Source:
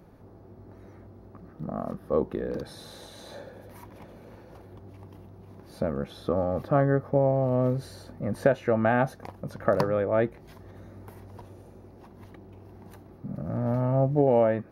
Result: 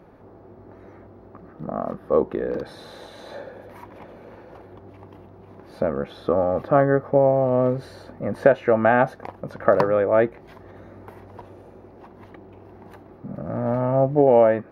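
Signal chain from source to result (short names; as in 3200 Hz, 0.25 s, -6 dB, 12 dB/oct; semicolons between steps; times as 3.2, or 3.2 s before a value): tone controls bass -8 dB, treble -13 dB; gain +7 dB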